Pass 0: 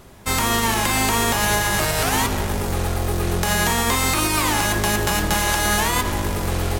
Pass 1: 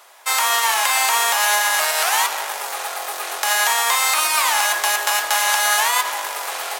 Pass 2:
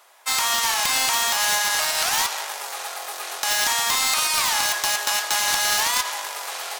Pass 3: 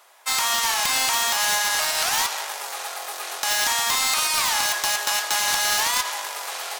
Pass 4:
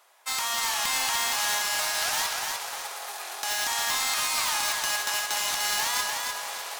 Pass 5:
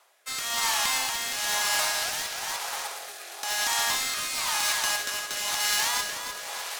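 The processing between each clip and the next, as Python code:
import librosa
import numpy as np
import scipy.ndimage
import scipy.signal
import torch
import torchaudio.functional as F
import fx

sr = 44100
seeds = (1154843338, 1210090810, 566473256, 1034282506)

y1 = scipy.signal.sosfilt(scipy.signal.butter(4, 690.0, 'highpass', fs=sr, output='sos'), x)
y1 = F.gain(torch.from_numpy(y1), 3.5).numpy()
y2 = (np.mod(10.0 ** (8.5 / 20.0) * y1 + 1.0, 2.0) - 1.0) / 10.0 ** (8.5 / 20.0)
y2 = fx.dynamic_eq(y2, sr, hz=5100.0, q=0.78, threshold_db=-35.0, ratio=4.0, max_db=7)
y2 = F.gain(torch.from_numpy(y2), -6.0).numpy()
y3 = 10.0 ** (-9.5 / 20.0) * np.tanh(y2 / 10.0 ** (-9.5 / 20.0))
y4 = fx.echo_feedback(y3, sr, ms=299, feedback_pct=38, wet_db=-4)
y4 = F.gain(torch.from_numpy(y4), -6.5).numpy()
y5 = fx.rotary(y4, sr, hz=1.0)
y5 = F.gain(torch.from_numpy(y5), 2.5).numpy()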